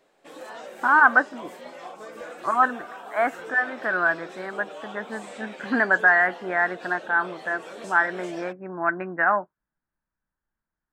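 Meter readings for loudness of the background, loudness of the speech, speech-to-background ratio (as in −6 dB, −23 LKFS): −40.5 LKFS, −23.0 LKFS, 17.5 dB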